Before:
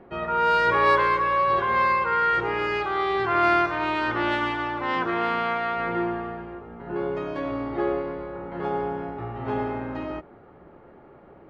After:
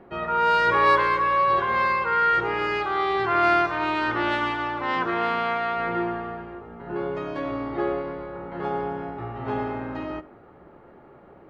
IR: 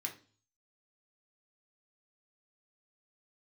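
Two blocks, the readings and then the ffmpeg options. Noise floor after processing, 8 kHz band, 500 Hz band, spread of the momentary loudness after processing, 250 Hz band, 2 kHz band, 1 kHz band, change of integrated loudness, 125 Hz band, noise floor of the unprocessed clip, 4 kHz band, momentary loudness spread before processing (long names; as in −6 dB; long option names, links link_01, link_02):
−50 dBFS, can't be measured, −0.5 dB, 14 LU, −0.5 dB, +0.5 dB, +0.5 dB, +0.5 dB, −0.5 dB, −50 dBFS, +1.0 dB, 14 LU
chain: -filter_complex "[0:a]asplit=2[link_01][link_02];[1:a]atrim=start_sample=2205,asetrate=22050,aresample=44100[link_03];[link_02][link_03]afir=irnorm=-1:irlink=0,volume=-19.5dB[link_04];[link_01][link_04]amix=inputs=2:normalize=0"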